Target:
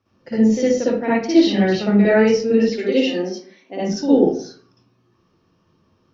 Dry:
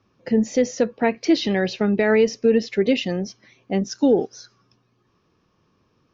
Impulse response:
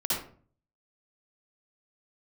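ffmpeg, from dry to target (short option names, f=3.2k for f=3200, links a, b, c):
-filter_complex "[0:a]asplit=3[a][b][c];[a]afade=t=out:st=2.71:d=0.02[d];[b]highpass=f=260:w=0.5412,highpass=f=260:w=1.3066,afade=t=in:st=2.71:d=0.02,afade=t=out:st=3.8:d=0.02[e];[c]afade=t=in:st=3.8:d=0.02[f];[d][e][f]amix=inputs=3:normalize=0[g];[1:a]atrim=start_sample=2205[h];[g][h]afir=irnorm=-1:irlink=0,volume=-6dB"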